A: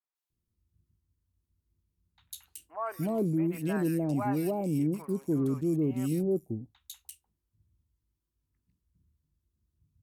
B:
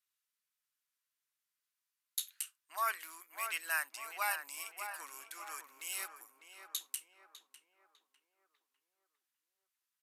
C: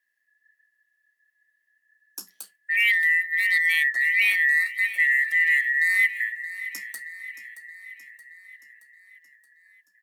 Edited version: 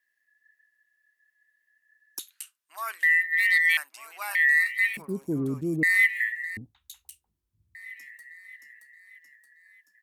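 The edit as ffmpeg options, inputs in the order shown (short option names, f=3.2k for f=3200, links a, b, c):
-filter_complex "[1:a]asplit=2[a][b];[0:a]asplit=2[c][d];[2:a]asplit=5[e][f][g][h][i];[e]atrim=end=2.192[j];[a]atrim=start=2.188:end=3.032[k];[f]atrim=start=3.028:end=3.772[l];[b]atrim=start=3.768:end=4.352[m];[g]atrim=start=4.348:end=4.972[n];[c]atrim=start=4.968:end=5.832[o];[h]atrim=start=5.828:end=6.572[p];[d]atrim=start=6.568:end=7.752[q];[i]atrim=start=7.748[r];[j][k]acrossfade=d=0.004:c1=hsin:c2=hsin[s];[s][l]acrossfade=d=0.004:c1=hsin:c2=hsin[t];[t][m]acrossfade=d=0.004:c1=hsin:c2=hsin[u];[u][n]acrossfade=d=0.004:c1=hsin:c2=hsin[v];[v][o]acrossfade=d=0.004:c1=hsin:c2=hsin[w];[w][p]acrossfade=d=0.004:c1=hsin:c2=hsin[x];[x][q]acrossfade=d=0.004:c1=hsin:c2=hsin[y];[y][r]acrossfade=d=0.004:c1=hsin:c2=hsin"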